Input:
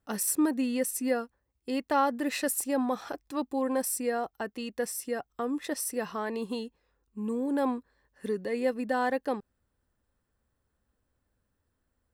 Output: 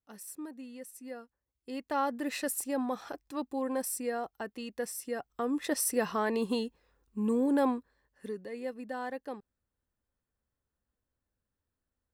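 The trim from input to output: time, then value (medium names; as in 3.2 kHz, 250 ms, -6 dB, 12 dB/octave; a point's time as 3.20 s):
0.97 s -16.5 dB
2.10 s -4 dB
5.03 s -4 dB
5.86 s +3 dB
7.44 s +3 dB
8.51 s -9.5 dB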